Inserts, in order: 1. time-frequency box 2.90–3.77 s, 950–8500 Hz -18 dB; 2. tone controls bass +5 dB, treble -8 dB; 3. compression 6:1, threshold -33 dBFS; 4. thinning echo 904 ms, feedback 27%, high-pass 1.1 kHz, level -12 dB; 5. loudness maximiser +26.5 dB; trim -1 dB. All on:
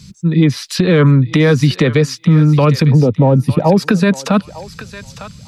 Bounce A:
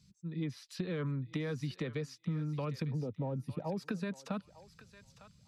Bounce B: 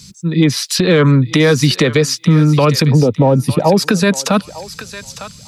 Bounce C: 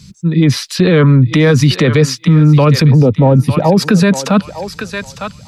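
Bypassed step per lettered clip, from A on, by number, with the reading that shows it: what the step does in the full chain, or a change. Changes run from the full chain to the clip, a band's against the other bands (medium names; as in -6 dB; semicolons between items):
5, crest factor change +4.5 dB; 2, 8 kHz band +7.0 dB; 3, mean gain reduction 8.0 dB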